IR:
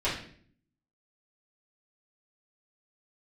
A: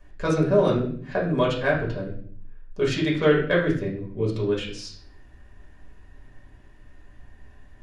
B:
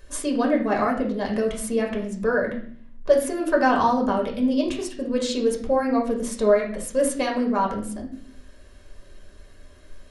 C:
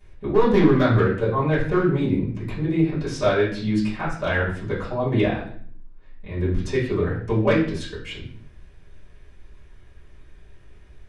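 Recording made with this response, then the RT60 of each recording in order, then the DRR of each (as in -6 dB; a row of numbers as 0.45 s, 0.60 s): C; 0.55 s, 0.55 s, 0.55 s; -5.0 dB, -0.5 dB, -11.0 dB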